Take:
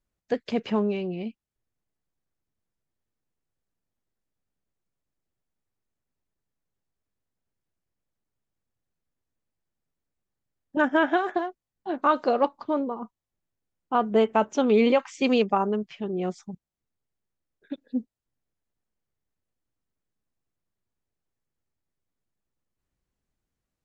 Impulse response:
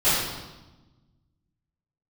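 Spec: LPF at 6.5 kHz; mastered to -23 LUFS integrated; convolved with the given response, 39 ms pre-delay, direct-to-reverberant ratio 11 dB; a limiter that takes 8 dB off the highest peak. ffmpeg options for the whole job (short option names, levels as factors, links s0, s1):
-filter_complex "[0:a]lowpass=6500,alimiter=limit=0.141:level=0:latency=1,asplit=2[s0][s1];[1:a]atrim=start_sample=2205,adelay=39[s2];[s1][s2]afir=irnorm=-1:irlink=0,volume=0.0376[s3];[s0][s3]amix=inputs=2:normalize=0,volume=2"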